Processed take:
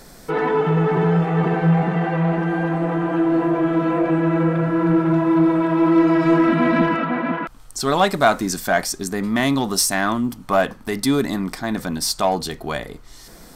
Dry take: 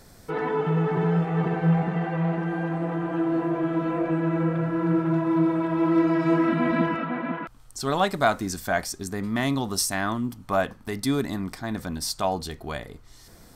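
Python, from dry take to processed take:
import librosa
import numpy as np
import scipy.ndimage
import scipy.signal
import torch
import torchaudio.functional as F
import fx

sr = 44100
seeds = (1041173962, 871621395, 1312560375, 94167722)

p1 = fx.peak_eq(x, sr, hz=89.0, db=-14.0, octaves=0.64)
p2 = 10.0 ** (-24.0 / 20.0) * np.tanh(p1 / 10.0 ** (-24.0 / 20.0))
p3 = p1 + F.gain(torch.from_numpy(p2), -4.5).numpy()
y = F.gain(torch.from_numpy(p3), 4.0).numpy()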